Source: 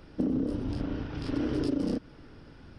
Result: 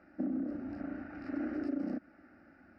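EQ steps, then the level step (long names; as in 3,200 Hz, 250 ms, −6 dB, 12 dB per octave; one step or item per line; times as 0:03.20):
band-pass filter 160–2,200 Hz
parametric band 310 Hz −5 dB 2.1 octaves
phaser with its sweep stopped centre 670 Hz, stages 8
0.0 dB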